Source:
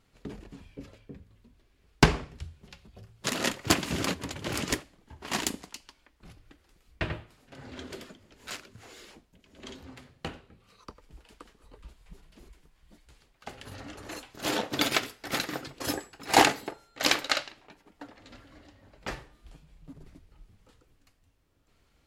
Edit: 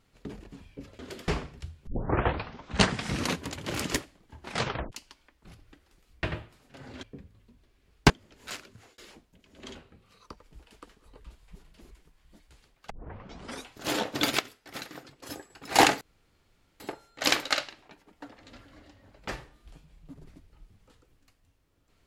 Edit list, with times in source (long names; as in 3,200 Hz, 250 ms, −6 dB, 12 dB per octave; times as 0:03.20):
0:00.99–0:02.06: swap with 0:07.81–0:08.10
0:02.65: tape start 1.55 s
0:05.20: tape stop 0.50 s
0:08.62–0:08.98: fade out equal-power
0:09.75–0:10.33: remove
0:13.48: tape start 0.79 s
0:14.97–0:16.08: clip gain −9.5 dB
0:16.59: splice in room tone 0.79 s